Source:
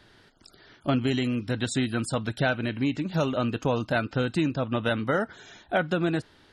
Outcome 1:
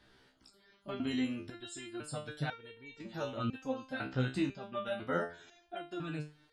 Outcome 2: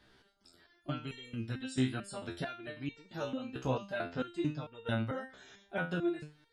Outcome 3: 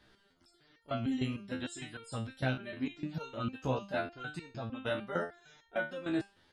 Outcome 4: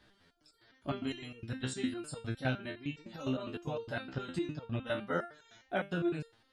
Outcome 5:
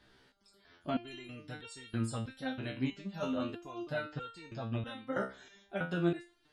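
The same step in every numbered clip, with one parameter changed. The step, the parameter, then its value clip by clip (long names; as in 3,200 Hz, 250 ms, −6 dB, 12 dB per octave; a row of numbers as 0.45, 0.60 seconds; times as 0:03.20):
step-sequenced resonator, speed: 2, 4.5, 6.6, 9.8, 3.1 Hertz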